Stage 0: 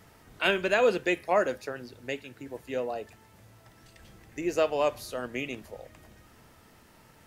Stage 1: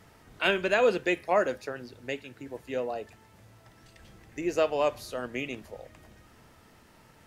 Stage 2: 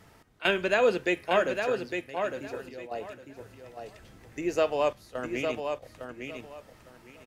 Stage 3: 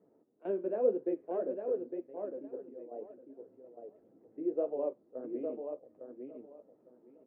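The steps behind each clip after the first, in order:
high shelf 11000 Hz -6.5 dB
step gate "x.xxxxxxx.xx." 67 bpm -12 dB; on a send: feedback echo 0.857 s, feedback 21%, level -6 dB
flange 1.9 Hz, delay 4.7 ms, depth 9.7 ms, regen -41%; Butterworth band-pass 370 Hz, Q 1.2

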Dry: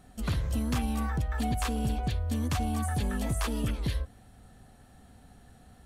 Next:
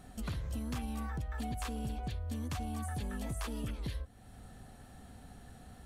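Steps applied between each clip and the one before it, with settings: compressor 2:1, threshold -46 dBFS, peak gain reduction 11.5 dB; gain +2 dB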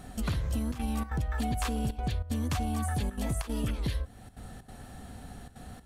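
step gate "xxxxxxxxx.xxx.x" 189 bpm -12 dB; gain +7.5 dB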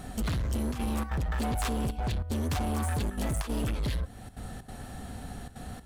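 hard clip -31.5 dBFS, distortion -10 dB; gain +4.5 dB

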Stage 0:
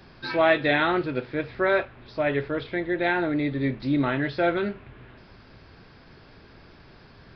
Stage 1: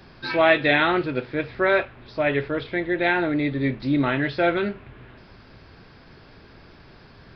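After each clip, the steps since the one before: dynamic EQ 2600 Hz, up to +4 dB, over -39 dBFS, Q 1.6; gain +2 dB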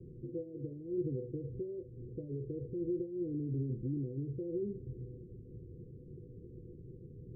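compressor, threshold -27 dBFS, peak gain reduction 14.5 dB; limiter -27.5 dBFS, peak gain reduction 10.5 dB; rippled Chebyshev low-pass 510 Hz, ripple 9 dB; gain +3.5 dB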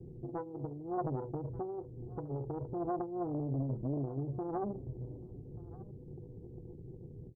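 self-modulated delay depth 0.75 ms; echo 1.184 s -20.5 dB; ending taper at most 250 dB/s; gain +2 dB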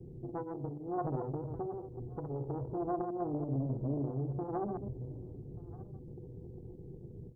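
reverse delay 0.111 s, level -6 dB

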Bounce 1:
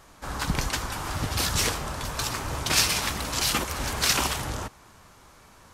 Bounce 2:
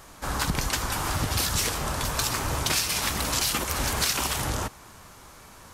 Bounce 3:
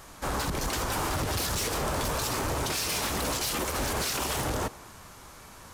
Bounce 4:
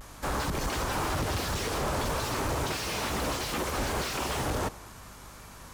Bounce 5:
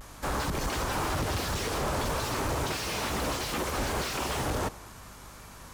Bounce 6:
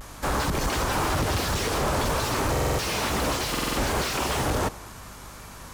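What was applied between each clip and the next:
high shelf 8700 Hz +6.5 dB; compressor 10:1, threshold -26 dBFS, peak gain reduction 11.5 dB; gain +4 dB
dynamic EQ 440 Hz, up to +7 dB, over -47 dBFS, Q 0.8; limiter -18 dBFS, peak gain reduction 10 dB; hard clip -25.5 dBFS, distortion -13 dB
vibrato 0.42 Hz 33 cents; hum 50 Hz, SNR 22 dB; slew limiter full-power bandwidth 95 Hz
nothing audible
stuck buffer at 2.51/3.5, samples 2048, times 5; gain +5 dB

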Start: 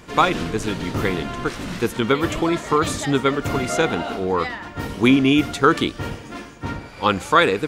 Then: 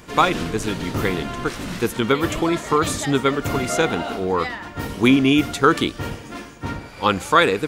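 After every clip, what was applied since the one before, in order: high shelf 9900 Hz +7 dB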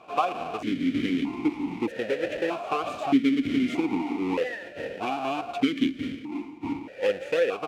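half-waves squared off; compressor 6:1, threshold -15 dBFS, peak gain reduction 9 dB; vowel sequencer 1.6 Hz; gain +3.5 dB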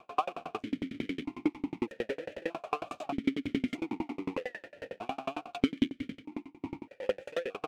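dB-ramp tremolo decaying 11 Hz, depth 34 dB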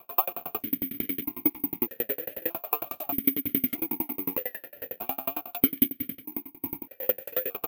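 careless resampling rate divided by 3×, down none, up zero stuff

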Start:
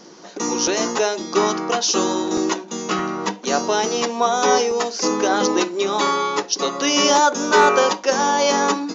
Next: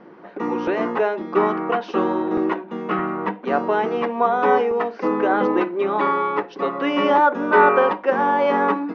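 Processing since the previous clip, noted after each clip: LPF 2200 Hz 24 dB/oct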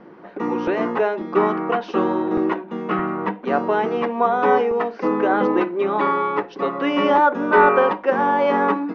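low shelf 130 Hz +6 dB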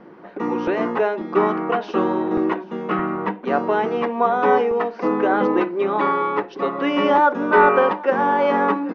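echo 0.781 s -20.5 dB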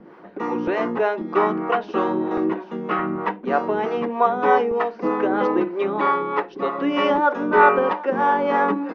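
harmonic tremolo 3.2 Hz, depth 70%, crossover 420 Hz; gain +2 dB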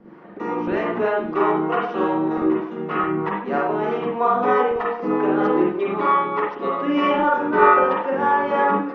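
reverb, pre-delay 44 ms, DRR -3 dB; gain -4.5 dB

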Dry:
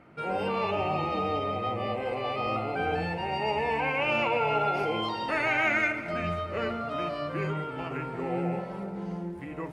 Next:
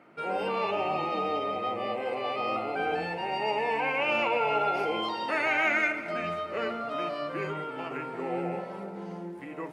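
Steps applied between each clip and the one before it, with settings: HPF 240 Hz 12 dB/oct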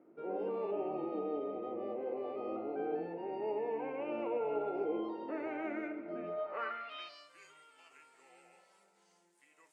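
band-pass sweep 350 Hz -> 7800 Hz, 6.22–7.27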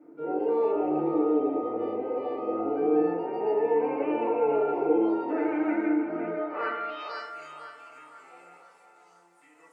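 narrowing echo 0.504 s, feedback 44%, band-pass 1100 Hz, level -6 dB; FDN reverb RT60 0.53 s, low-frequency decay 1×, high-frequency decay 0.35×, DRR -7 dB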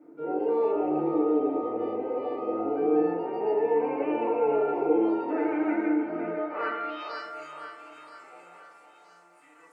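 thinning echo 0.974 s, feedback 46%, high-pass 560 Hz, level -15.5 dB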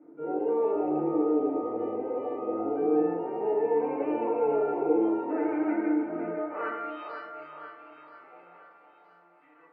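air absorption 470 m

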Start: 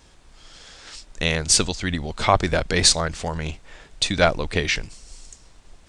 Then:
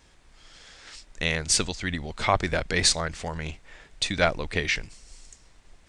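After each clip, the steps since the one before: bell 2000 Hz +4.5 dB 0.71 oct; gain -5.5 dB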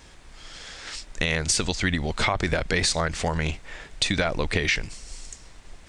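limiter -15.5 dBFS, peak gain reduction 9 dB; compressor, threshold -28 dBFS, peak gain reduction 7 dB; gain +8.5 dB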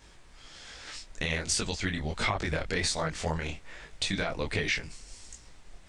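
detuned doubles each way 45 cents; gain -2.5 dB

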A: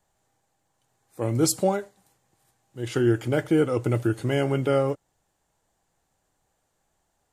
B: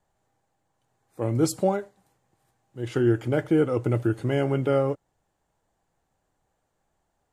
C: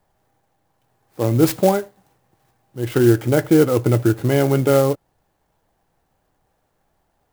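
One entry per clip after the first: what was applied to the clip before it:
high shelf 2800 Hz -8.5 dB
clock jitter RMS 0.041 ms; gain +7.5 dB

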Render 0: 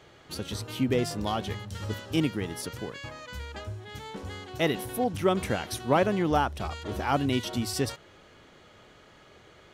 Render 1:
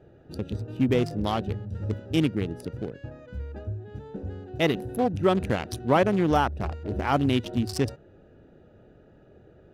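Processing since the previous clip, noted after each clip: Wiener smoothing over 41 samples; in parallel at -2 dB: limiter -21 dBFS, peak gain reduction 9.5 dB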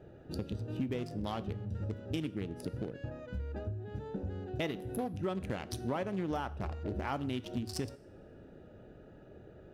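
compressor 5:1, threshold -34 dBFS, peak gain reduction 16 dB; two-slope reverb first 0.61 s, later 2.7 s, from -26 dB, DRR 13.5 dB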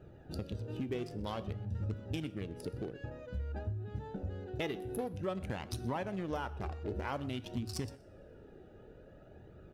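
flange 0.52 Hz, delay 0.7 ms, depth 2 ms, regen +48%; echo 0.124 s -22 dB; gain +3 dB

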